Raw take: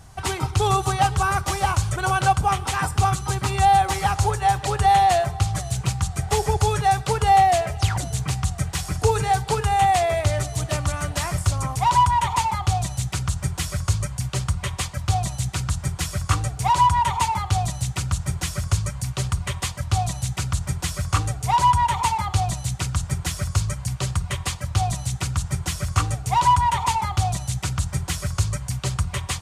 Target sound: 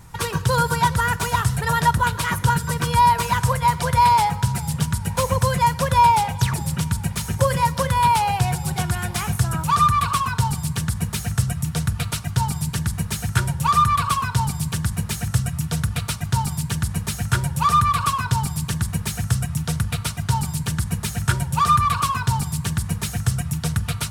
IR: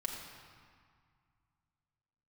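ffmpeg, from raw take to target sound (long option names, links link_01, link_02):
-filter_complex "[0:a]asetrate=53802,aresample=44100,asplit=2[link_01][link_02];[link_02]bass=frequency=250:gain=14,treble=frequency=4000:gain=6[link_03];[1:a]atrim=start_sample=2205,asetrate=38808,aresample=44100[link_04];[link_03][link_04]afir=irnorm=-1:irlink=0,volume=-22.5dB[link_05];[link_01][link_05]amix=inputs=2:normalize=0"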